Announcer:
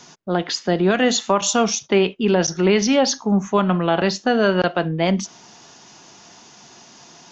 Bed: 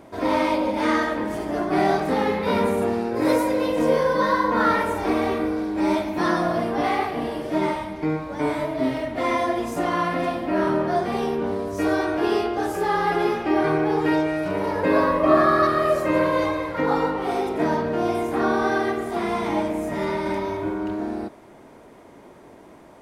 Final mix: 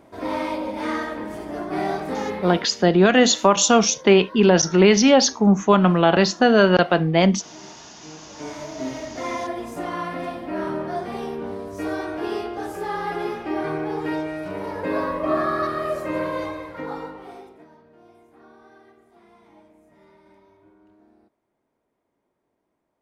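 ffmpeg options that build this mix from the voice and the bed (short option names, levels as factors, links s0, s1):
-filter_complex "[0:a]adelay=2150,volume=1.33[s0];[1:a]volume=3.55,afade=t=out:st=2.39:d=0.27:silence=0.149624,afade=t=in:st=8.03:d=0.94:silence=0.158489,afade=t=out:st=16.32:d=1.34:silence=0.0668344[s1];[s0][s1]amix=inputs=2:normalize=0"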